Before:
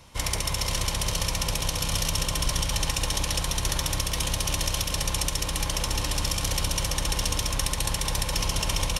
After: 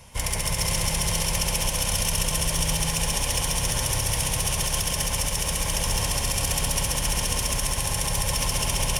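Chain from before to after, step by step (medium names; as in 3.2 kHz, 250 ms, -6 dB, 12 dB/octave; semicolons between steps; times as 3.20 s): graphic EQ with 31 bands 315 Hz -10 dB, 1.25 kHz -8 dB, 4 kHz -8 dB, 10 kHz +7 dB; peak limiter -15 dBFS, peak gain reduction 6 dB; saturation -19 dBFS, distortion -20 dB; bit-crushed delay 130 ms, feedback 80%, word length 9-bit, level -5.5 dB; trim +3.5 dB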